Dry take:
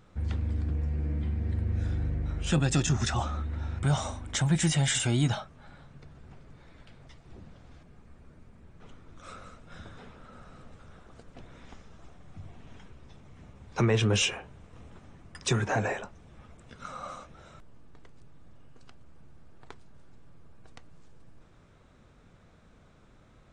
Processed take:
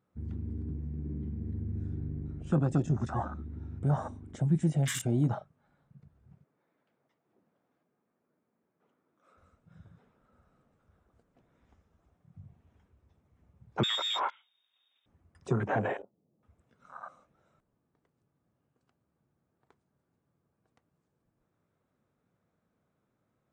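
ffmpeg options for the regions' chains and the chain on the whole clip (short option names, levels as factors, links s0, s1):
-filter_complex "[0:a]asettb=1/sr,asplit=3[s0][s1][s2];[s0]atrim=end=6.444[s3];[s1]atrim=start=6.44:end=9.38,asetpts=PTS-STARTPTS,afade=t=in:d=0.004:c=qsin,afade=t=out:st=2.936:d=0.004:c=qsin,highpass=260,highshelf=f=4000:g=-8.5[s4];[s2]atrim=start=9.376[s5];[s3][s4]acrossfade=d=0.004:c1=hsin:c2=qsin[s6];[s6][s5]acrossfade=d=0.004:c1=qsin:c2=hsin,asettb=1/sr,asplit=3[s7][s8][s9];[s7]atrim=end=13.834[s10];[s8]atrim=start=13.83:end=15.06,asetpts=PTS-STARTPTS,afade=t=in:d=0.004:c=qsin,afade=t=out:st=1.226:d=0.004:c=qsin,highpass=f=46:p=1,lowpass=f=3200:t=q:w=0.5098,lowpass=f=3200:t=q:w=0.6013,lowpass=f=3200:t=q:w=0.9,lowpass=f=3200:t=q:w=2.563,afreqshift=-3800[s11];[s9]atrim=start=15.056[s12];[s10][s11]acrossfade=d=0.004:c1=hsin:c2=qsin[s13];[s13][s12]acrossfade=d=0.004:c1=qsin:c2=hsin,asettb=1/sr,asplit=3[s14][s15][s16];[s14]atrim=end=16.024[s17];[s15]atrim=start=16.02:end=16.43,asetpts=PTS-STARTPTS,afade=t=in:d=0.004:c=qsin,afade=t=out:st=0.406:d=0.004:c=qsin,asuperpass=centerf=280:order=4:qfactor=0.66,acompressor=mode=upward:threshold=0.00141:ratio=2.5:attack=3.2:release=140:knee=2.83:detection=peak[s18];[s16]atrim=start=16.426[s19];[s17][s18]acrossfade=d=0.004:c1=hsin:c2=qsin[s20];[s20][s19]acrossfade=d=0.004:c1=qsin:c2=hsin,afwtdn=0.0224,highpass=120,equalizer=f=4200:w=0.57:g=-8.5"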